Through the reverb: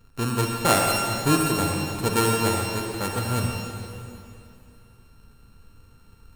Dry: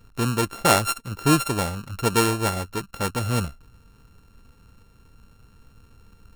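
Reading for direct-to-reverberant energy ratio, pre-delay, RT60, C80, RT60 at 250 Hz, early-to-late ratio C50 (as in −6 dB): 0.5 dB, 36 ms, 2.7 s, 2.0 dB, 2.8 s, 1.0 dB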